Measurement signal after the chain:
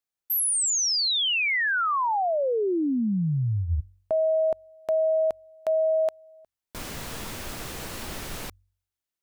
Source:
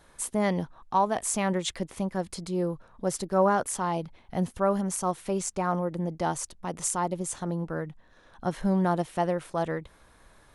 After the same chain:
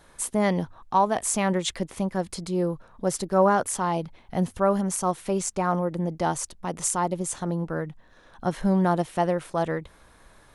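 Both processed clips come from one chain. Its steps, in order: de-hum 46.34 Hz, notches 2; trim +3 dB

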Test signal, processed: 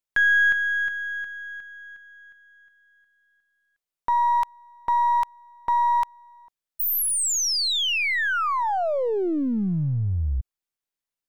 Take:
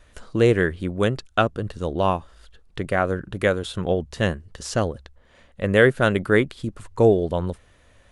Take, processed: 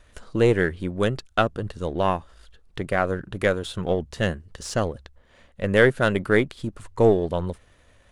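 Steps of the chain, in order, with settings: partial rectifier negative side -3 dB

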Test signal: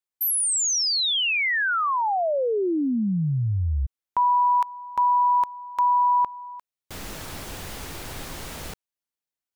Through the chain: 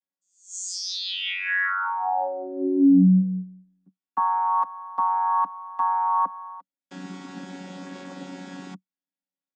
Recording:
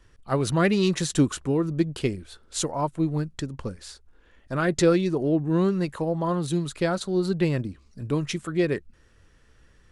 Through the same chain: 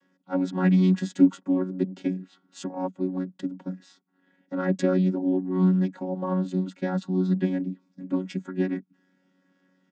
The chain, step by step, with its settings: vocoder on a held chord bare fifth, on F#3; comb 4.2 ms, depth 39%

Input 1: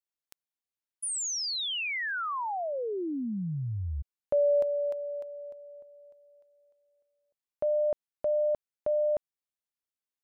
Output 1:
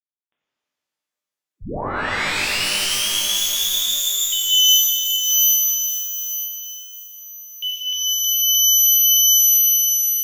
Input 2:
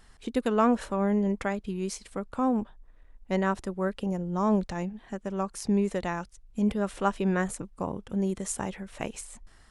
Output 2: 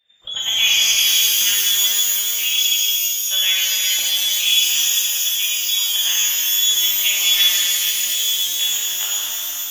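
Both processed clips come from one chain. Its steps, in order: frequency inversion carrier 3.6 kHz; expander -44 dBFS, range -19 dB; pitch-shifted reverb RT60 3.8 s, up +12 st, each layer -2 dB, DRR -8 dB

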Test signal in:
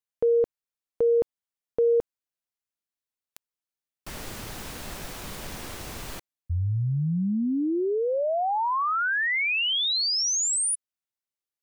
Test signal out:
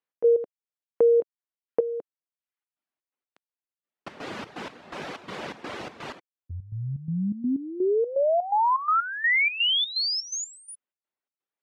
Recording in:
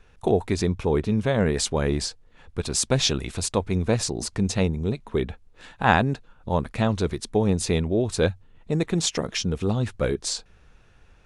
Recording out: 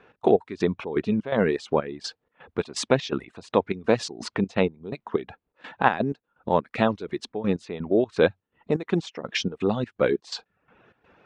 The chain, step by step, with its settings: low-pass 3.3 kHz 12 dB/octave; reverb removal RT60 0.6 s; high-pass 230 Hz 12 dB/octave; in parallel at +0.5 dB: compression, threshold -37 dBFS; on the sum: trance gate "x.x..xx.xx.x" 125 bpm -12 dB; tape noise reduction on one side only decoder only; trim +2.5 dB

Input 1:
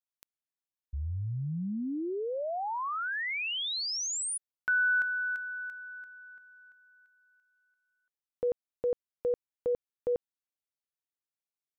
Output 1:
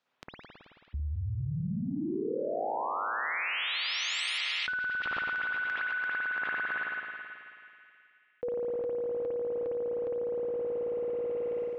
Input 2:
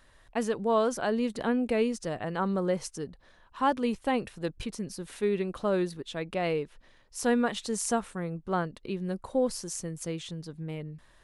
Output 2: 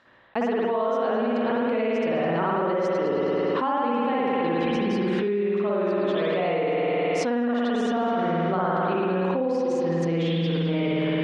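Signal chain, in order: high-pass 200 Hz 12 dB/octave; gate -55 dBFS, range -31 dB; reverb removal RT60 1.7 s; dynamic bell 1.6 kHz, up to -4 dB, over -50 dBFS, Q 5.9; reverse; upward compressor 1.5:1, threshold -34 dBFS; reverse; distance through air 190 m; on a send: band-passed feedback delay 207 ms, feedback 68%, band-pass 2.4 kHz, level -11 dB; on the sum: spring tank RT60 2.2 s, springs 54 ms, chirp 60 ms, DRR -8.5 dB; level flattener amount 100%; trim -8.5 dB

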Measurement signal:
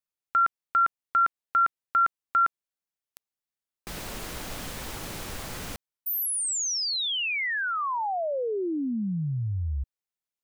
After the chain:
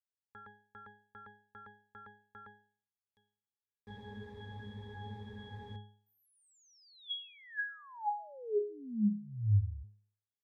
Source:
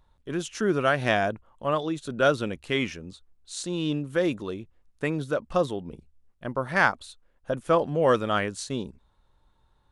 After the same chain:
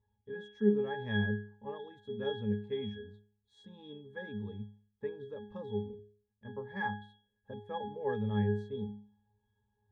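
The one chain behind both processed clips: pitch-class resonator G#, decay 0.46 s; trim +8 dB

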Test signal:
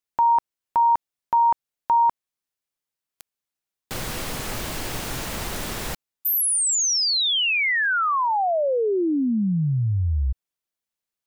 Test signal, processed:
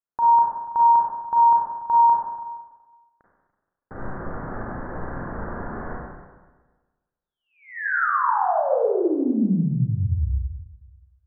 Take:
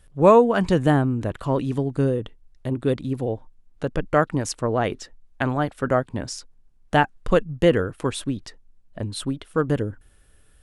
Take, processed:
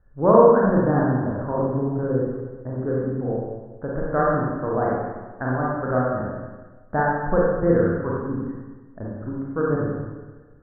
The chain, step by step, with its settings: steep low-pass 1.7 kHz 72 dB/octave; Schroeder reverb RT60 1.3 s, combs from 32 ms, DRR -5 dB; trim -5.5 dB

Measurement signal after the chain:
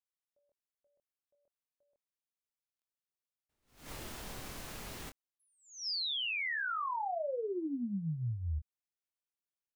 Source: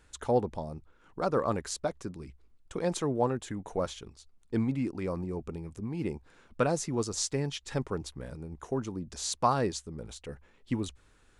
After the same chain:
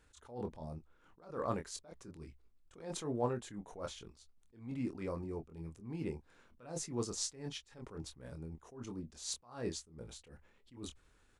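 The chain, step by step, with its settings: doubling 25 ms -7 dB; attacks held to a fixed rise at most 130 dB/s; trim -6.5 dB

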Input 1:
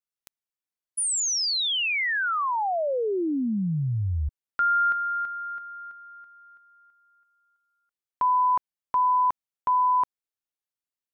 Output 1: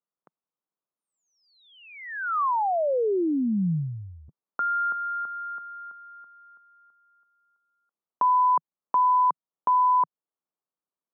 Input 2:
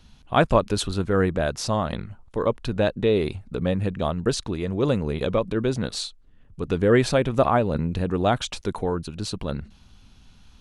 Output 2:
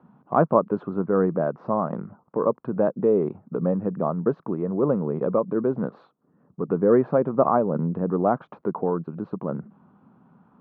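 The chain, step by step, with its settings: elliptic band-pass 160–1200 Hz, stop band 80 dB; in parallel at 0 dB: compression, threshold -37 dBFS

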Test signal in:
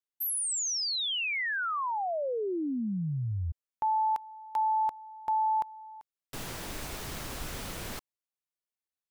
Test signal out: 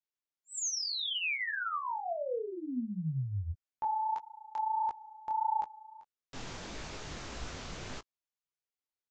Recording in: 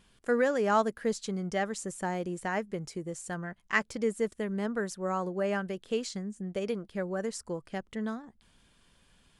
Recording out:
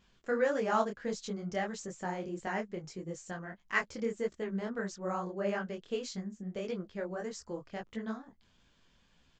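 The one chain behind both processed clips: resampled via 16 kHz; detune thickener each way 56 cents

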